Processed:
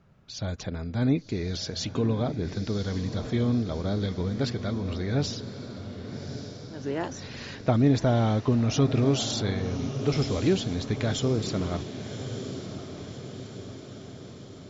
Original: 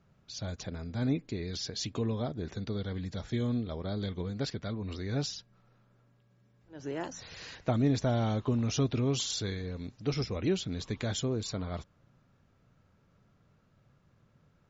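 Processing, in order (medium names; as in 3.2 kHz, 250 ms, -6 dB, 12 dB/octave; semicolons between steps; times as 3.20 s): treble shelf 5.5 kHz -7 dB; on a send: echo that smears into a reverb 1135 ms, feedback 58%, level -10 dB; on the sum: trim +6 dB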